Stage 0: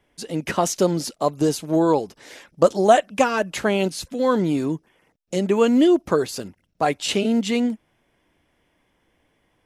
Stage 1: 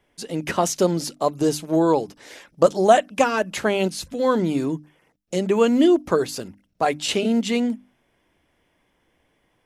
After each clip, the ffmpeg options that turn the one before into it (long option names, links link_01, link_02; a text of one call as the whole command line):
ffmpeg -i in.wav -af "bandreject=frequency=50:width_type=h:width=6,bandreject=frequency=100:width_type=h:width=6,bandreject=frequency=150:width_type=h:width=6,bandreject=frequency=200:width_type=h:width=6,bandreject=frequency=250:width_type=h:width=6,bandreject=frequency=300:width_type=h:width=6" out.wav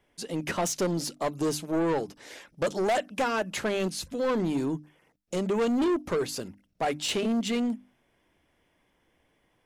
ffmpeg -i in.wav -af "asoftclip=type=tanh:threshold=-19dB,volume=-3dB" out.wav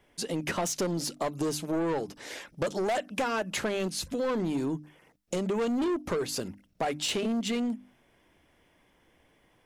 ffmpeg -i in.wav -af "acompressor=threshold=-34dB:ratio=3,volume=4.5dB" out.wav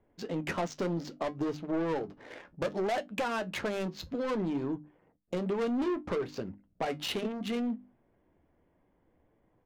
ffmpeg -i in.wav -af "aresample=16000,aresample=44100,adynamicsmooth=sensitivity=5.5:basefreq=1000,flanger=delay=9.1:depth=3:regen=-60:speed=0.64:shape=triangular,volume=2dB" out.wav